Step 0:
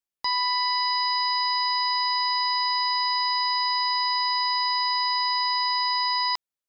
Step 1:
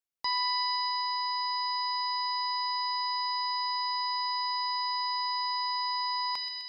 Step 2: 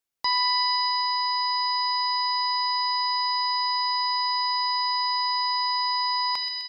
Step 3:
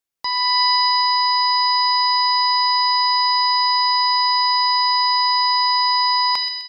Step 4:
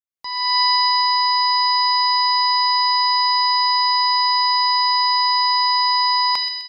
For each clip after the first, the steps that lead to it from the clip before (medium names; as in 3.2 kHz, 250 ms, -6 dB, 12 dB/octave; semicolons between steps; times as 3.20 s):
feedback echo behind a high-pass 128 ms, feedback 71%, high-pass 3.2 kHz, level -7 dB; trim -4.5 dB
feedback delay 73 ms, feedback 30%, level -22 dB; trim +6 dB
level rider gain up to 8 dB
fade-in on the opening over 0.56 s